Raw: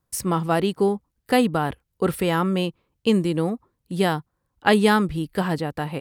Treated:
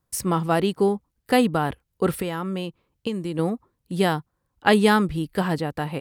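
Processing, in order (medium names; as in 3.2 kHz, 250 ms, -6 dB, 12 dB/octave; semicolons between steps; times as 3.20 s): 2.14–3.39 s: compression 10:1, threshold -24 dBFS, peak gain reduction 11 dB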